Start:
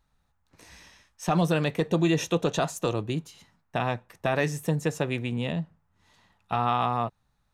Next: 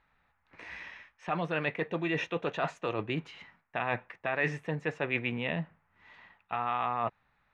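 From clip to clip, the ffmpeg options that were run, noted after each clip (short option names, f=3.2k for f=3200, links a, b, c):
-af "lowshelf=f=240:g=-11,areverse,acompressor=threshold=-34dB:ratio=6,areverse,lowpass=f=2.2k:t=q:w=2.3,volume=4.5dB"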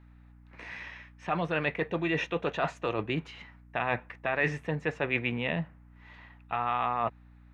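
-af "aeval=exprs='val(0)+0.00178*(sin(2*PI*60*n/s)+sin(2*PI*2*60*n/s)/2+sin(2*PI*3*60*n/s)/3+sin(2*PI*4*60*n/s)/4+sin(2*PI*5*60*n/s)/5)':c=same,volume=2dB"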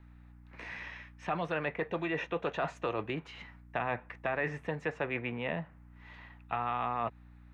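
-filter_complex "[0:a]acrossover=split=450|1900[a][b][c];[a]acompressor=threshold=-38dB:ratio=4[d];[b]acompressor=threshold=-31dB:ratio=4[e];[c]acompressor=threshold=-46dB:ratio=4[f];[d][e][f]amix=inputs=3:normalize=0"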